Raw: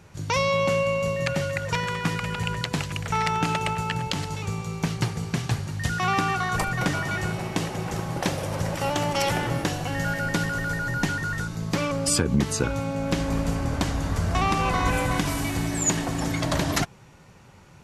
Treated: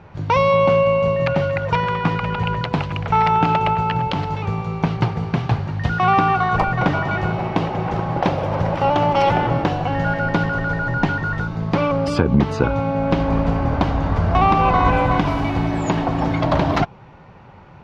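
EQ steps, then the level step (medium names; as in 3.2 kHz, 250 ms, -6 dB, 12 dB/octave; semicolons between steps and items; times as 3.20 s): dynamic bell 1.8 kHz, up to -5 dB, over -45 dBFS, Q 4.6; distance through air 300 m; peaking EQ 820 Hz +6 dB 1.1 oct; +6.5 dB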